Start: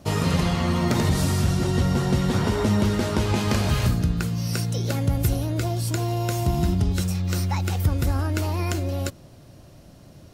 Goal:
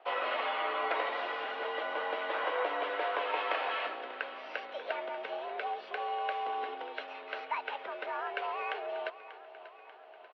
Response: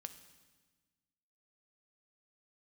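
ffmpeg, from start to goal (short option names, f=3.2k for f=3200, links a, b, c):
-af "highpass=f=460:t=q:w=0.5412,highpass=f=460:t=q:w=1.307,lowpass=f=3k:t=q:w=0.5176,lowpass=f=3k:t=q:w=0.7071,lowpass=f=3k:t=q:w=1.932,afreqshift=86,aecho=1:1:589|1178|1767|2356|2945|3534:0.178|0.103|0.0598|0.0347|0.0201|0.0117,volume=-2.5dB"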